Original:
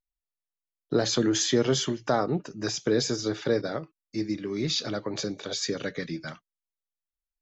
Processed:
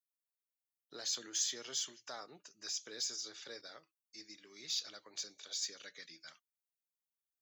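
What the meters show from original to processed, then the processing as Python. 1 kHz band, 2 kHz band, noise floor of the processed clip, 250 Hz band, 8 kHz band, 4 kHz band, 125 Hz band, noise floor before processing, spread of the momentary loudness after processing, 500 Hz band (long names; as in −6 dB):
−21.0 dB, −15.5 dB, below −85 dBFS, −31.0 dB, can't be measured, −9.0 dB, −37.5 dB, below −85 dBFS, 19 LU, −27.0 dB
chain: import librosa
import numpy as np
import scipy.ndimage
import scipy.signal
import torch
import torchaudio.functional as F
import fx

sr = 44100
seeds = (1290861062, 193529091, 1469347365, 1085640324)

p1 = np.diff(x, prepend=0.0)
p2 = 10.0 ** (-33.5 / 20.0) * np.tanh(p1 / 10.0 ** (-33.5 / 20.0))
p3 = p1 + (p2 * 10.0 ** (-7.0 / 20.0))
y = p3 * 10.0 ** (-6.5 / 20.0)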